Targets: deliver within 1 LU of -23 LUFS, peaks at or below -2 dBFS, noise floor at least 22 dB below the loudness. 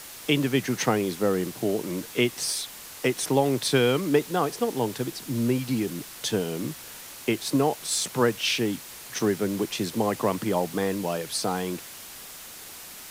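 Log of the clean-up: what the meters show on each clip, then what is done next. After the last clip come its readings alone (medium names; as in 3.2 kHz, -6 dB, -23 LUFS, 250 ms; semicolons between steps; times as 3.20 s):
noise floor -43 dBFS; noise floor target -49 dBFS; loudness -26.5 LUFS; peak level -8.5 dBFS; loudness target -23.0 LUFS
-> noise print and reduce 6 dB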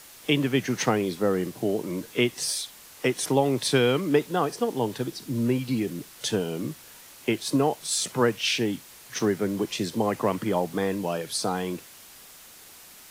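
noise floor -49 dBFS; loudness -26.5 LUFS; peak level -8.5 dBFS; loudness target -23.0 LUFS
-> trim +3.5 dB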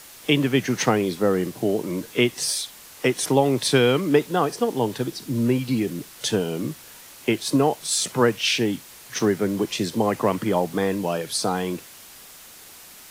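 loudness -23.0 LUFS; peak level -5.0 dBFS; noise floor -45 dBFS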